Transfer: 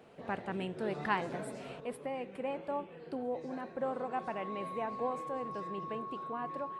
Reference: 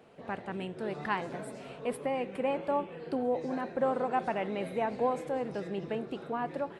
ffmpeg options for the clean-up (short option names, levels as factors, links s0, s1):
-af "bandreject=f=1100:w=30,asetnsamples=n=441:p=0,asendcmd='1.8 volume volume 6.5dB',volume=1"